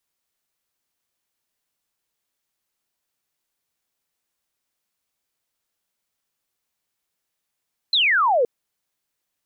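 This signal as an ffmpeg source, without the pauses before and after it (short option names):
-f lavfi -i "aevalsrc='0.178*clip(t/0.002,0,1)*clip((0.52-t)/0.002,0,1)*sin(2*PI*4200*0.52/log(450/4200)*(exp(log(450/4200)*t/0.52)-1))':d=0.52:s=44100"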